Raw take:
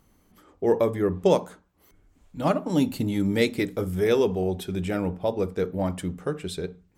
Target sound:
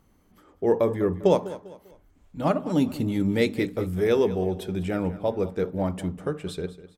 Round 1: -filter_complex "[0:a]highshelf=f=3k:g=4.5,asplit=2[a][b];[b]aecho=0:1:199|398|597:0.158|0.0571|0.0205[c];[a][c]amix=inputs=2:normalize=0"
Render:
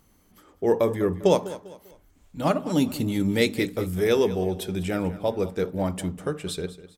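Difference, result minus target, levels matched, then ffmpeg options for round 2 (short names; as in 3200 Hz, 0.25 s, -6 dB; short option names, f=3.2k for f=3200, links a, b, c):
8000 Hz band +8.0 dB
-filter_complex "[0:a]highshelf=f=3k:g=-5,asplit=2[a][b];[b]aecho=0:1:199|398|597:0.158|0.0571|0.0205[c];[a][c]amix=inputs=2:normalize=0"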